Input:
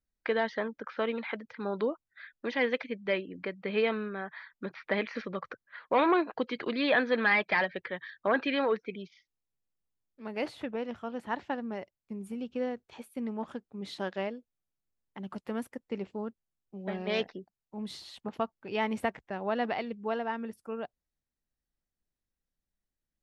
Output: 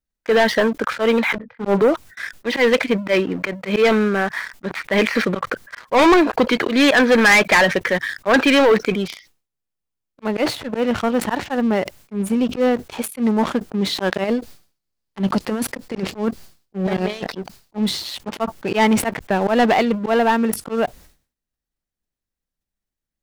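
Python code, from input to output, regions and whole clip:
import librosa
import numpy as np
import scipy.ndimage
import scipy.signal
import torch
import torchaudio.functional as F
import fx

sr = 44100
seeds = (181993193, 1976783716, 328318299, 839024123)

y = fx.chain(x, sr, fx.lowpass(hz=1200.0, slope=12),
    fx.doubler(ms=25.0, db=-8),
    fx.band_widen(depth_pct=100), at=(1.38, 1.82))
y = fx.chain(y, sr, fx.over_compress(threshold_db=-37.0, ratio=-0.5),
    fx.peak_eq(hz=4600.0, db=7.0, octaves=0.47), at=(14.24, 17.75))
y = fx.auto_swell(y, sr, attack_ms=101.0)
y = fx.leveller(y, sr, passes=3)
y = fx.sustainer(y, sr, db_per_s=140.0)
y = F.gain(torch.from_numpy(y), 8.0).numpy()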